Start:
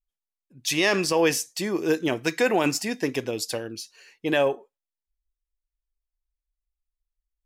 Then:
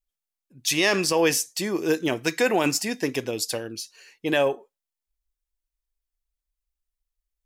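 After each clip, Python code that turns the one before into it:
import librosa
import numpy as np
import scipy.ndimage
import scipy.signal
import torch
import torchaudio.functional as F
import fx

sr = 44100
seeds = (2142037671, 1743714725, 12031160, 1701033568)

y = fx.high_shelf(x, sr, hz=4800.0, db=4.5)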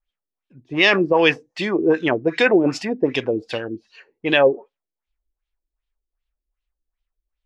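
y = fx.filter_lfo_lowpass(x, sr, shape='sine', hz=2.6, low_hz=320.0, high_hz=3500.0, q=2.3)
y = y * librosa.db_to_amplitude(3.5)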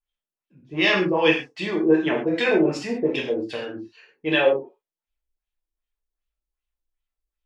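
y = fx.rev_gated(x, sr, seeds[0], gate_ms=160, shape='falling', drr_db=-2.5)
y = y * librosa.db_to_amplitude(-8.0)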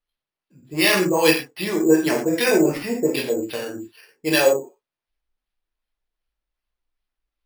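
y = np.repeat(x[::6], 6)[:len(x)]
y = y * librosa.db_to_amplitude(2.0)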